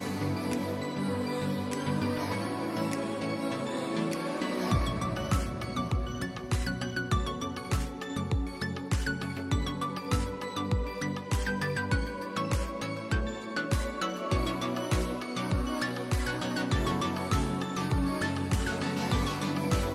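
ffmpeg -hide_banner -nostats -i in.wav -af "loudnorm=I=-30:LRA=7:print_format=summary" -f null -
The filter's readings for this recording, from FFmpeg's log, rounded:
Input Integrated:    -31.5 LUFS
Input True Peak:     -15.7 dBTP
Input LRA:             2.2 LU
Input Threshold:     -41.5 LUFS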